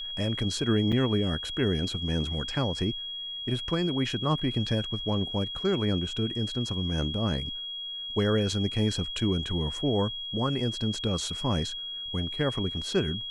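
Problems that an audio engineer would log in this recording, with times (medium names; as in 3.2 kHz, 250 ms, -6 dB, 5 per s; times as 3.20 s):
whine 3.3 kHz -34 dBFS
0.92–0.93 s: dropout 5.9 ms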